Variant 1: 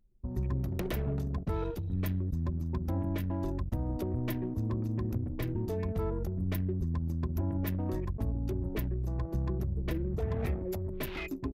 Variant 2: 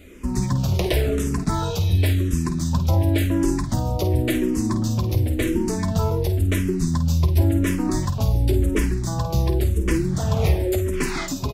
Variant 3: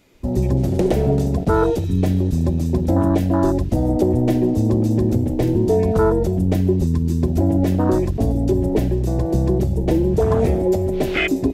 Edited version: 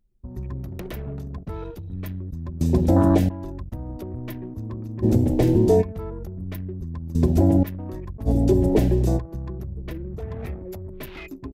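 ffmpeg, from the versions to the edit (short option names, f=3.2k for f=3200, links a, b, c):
-filter_complex "[2:a]asplit=4[a][b][c][d];[0:a]asplit=5[e][f][g][h][i];[e]atrim=end=2.612[j];[a]atrim=start=2.608:end=3.292[k];[f]atrim=start=3.288:end=5.04[l];[b]atrim=start=5.02:end=5.83[m];[g]atrim=start=5.81:end=7.152[n];[c]atrim=start=7.148:end=7.632[o];[h]atrim=start=7.628:end=8.29[p];[d]atrim=start=8.25:end=9.2[q];[i]atrim=start=9.16[r];[j][k]acrossfade=d=0.004:c1=hsin:c2=hsin[s];[s][l]acrossfade=d=0.004:c1=hsin:c2=hsin[t];[t][m]acrossfade=d=0.02:c1=tri:c2=tri[u];[u][n]acrossfade=d=0.02:c1=tri:c2=tri[v];[v][o]acrossfade=d=0.004:c1=hsin:c2=hsin[w];[w][p]acrossfade=d=0.004:c1=hsin:c2=hsin[x];[x][q]acrossfade=d=0.04:c1=tri:c2=tri[y];[y][r]acrossfade=d=0.04:c1=tri:c2=tri"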